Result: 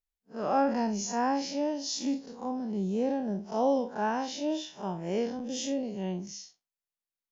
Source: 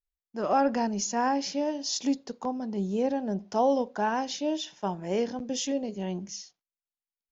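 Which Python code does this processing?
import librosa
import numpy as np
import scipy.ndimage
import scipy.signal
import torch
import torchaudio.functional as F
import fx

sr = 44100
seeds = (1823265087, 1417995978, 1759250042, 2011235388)

y = fx.spec_blur(x, sr, span_ms=94.0)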